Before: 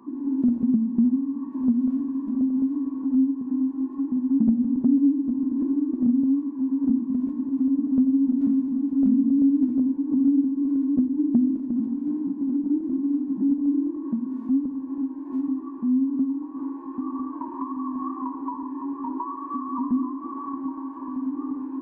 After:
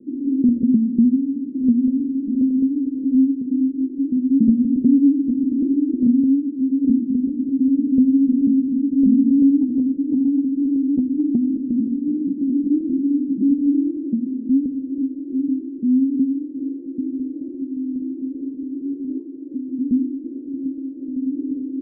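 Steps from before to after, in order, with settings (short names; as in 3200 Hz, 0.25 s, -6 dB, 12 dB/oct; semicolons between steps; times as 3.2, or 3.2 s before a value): steep low-pass 550 Hz 72 dB/oct; 9.59–11.69 compressor, threshold -20 dBFS, peak gain reduction 6 dB; gain +5 dB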